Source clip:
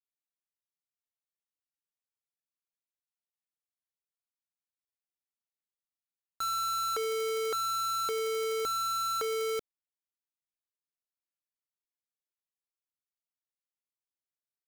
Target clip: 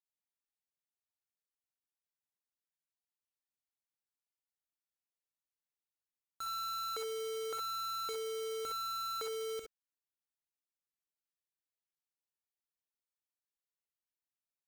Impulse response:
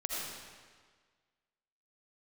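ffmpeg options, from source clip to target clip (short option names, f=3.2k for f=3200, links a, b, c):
-filter_complex "[1:a]atrim=start_sample=2205,atrim=end_sample=4410,asetrate=61740,aresample=44100[a];[0:a][a]afir=irnorm=-1:irlink=0,volume=-4dB"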